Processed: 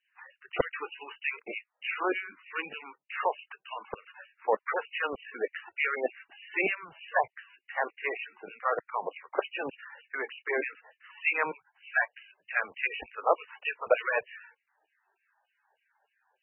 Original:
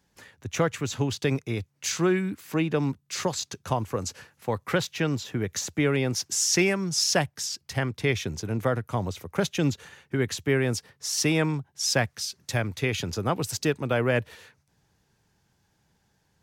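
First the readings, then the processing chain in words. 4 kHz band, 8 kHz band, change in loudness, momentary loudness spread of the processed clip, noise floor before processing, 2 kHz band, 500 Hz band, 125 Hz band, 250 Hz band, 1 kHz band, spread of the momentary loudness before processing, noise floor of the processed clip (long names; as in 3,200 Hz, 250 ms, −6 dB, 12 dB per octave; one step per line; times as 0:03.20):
−14.5 dB, below −40 dB, −5.5 dB, 13 LU, −71 dBFS, +0.5 dB, −5.0 dB, below −30 dB, −17.0 dB, +1.0 dB, 8 LU, −82 dBFS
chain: dynamic equaliser 450 Hz, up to +8 dB, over −43 dBFS, Q 4.4
auto-filter high-pass saw down 3.3 Hz 550–3,500 Hz
level −1.5 dB
MP3 8 kbit/s 24,000 Hz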